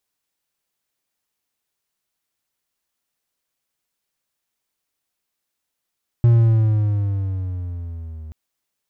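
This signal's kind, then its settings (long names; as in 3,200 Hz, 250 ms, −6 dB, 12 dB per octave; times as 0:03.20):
pitch glide with a swell triangle, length 2.08 s, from 119 Hz, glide −7.5 semitones, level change −23 dB, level −7 dB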